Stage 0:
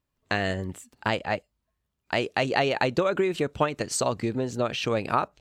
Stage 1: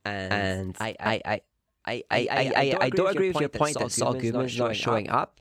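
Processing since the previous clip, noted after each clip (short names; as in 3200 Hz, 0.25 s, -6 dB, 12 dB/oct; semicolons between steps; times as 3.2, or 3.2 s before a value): reverse echo 0.255 s -5 dB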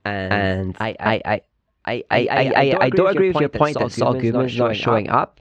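air absorption 220 m; gain +8.5 dB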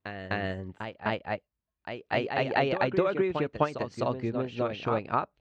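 upward expander 1.5:1, over -31 dBFS; gain -9 dB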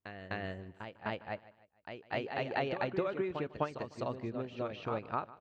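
feedback echo 0.151 s, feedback 44%, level -19 dB; gain -8 dB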